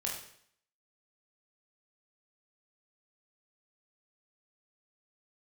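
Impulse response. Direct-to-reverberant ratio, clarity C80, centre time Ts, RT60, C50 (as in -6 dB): -3.0 dB, 8.0 dB, 38 ms, 0.65 s, 4.5 dB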